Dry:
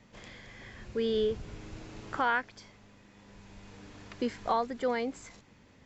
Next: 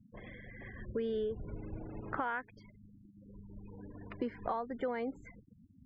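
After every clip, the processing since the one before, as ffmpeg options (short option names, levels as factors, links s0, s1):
-af "afftfilt=real='re*gte(hypot(re,im),0.00562)':imag='im*gte(hypot(re,im),0.00562)':win_size=1024:overlap=0.75,lowpass=2100,acompressor=threshold=0.0178:ratio=5,volume=1.26"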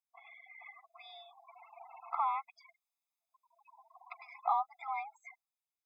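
-af "afreqshift=54,dynaudnorm=f=140:g=9:m=2,afftfilt=real='re*eq(mod(floor(b*sr/1024/670),2),1)':imag='im*eq(mod(floor(b*sr/1024/670),2),1)':win_size=1024:overlap=0.75"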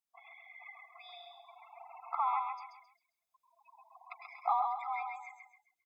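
-af "aecho=1:1:133|266|399|532:0.596|0.208|0.073|0.0255"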